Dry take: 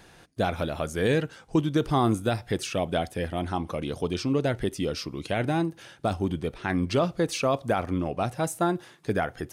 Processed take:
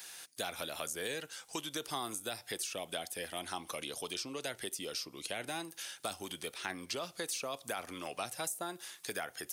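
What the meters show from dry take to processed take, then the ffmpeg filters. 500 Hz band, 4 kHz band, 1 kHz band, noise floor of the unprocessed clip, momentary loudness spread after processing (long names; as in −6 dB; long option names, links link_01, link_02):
−15.0 dB, −2.5 dB, −12.5 dB, −54 dBFS, 4 LU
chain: -filter_complex "[0:a]aderivative,acrossover=split=420|840[link_01][link_02][link_03];[link_01]acompressor=threshold=-59dB:ratio=4[link_04];[link_02]acompressor=threshold=-57dB:ratio=4[link_05];[link_03]acompressor=threshold=-53dB:ratio=4[link_06];[link_04][link_05][link_06]amix=inputs=3:normalize=0,volume=13dB"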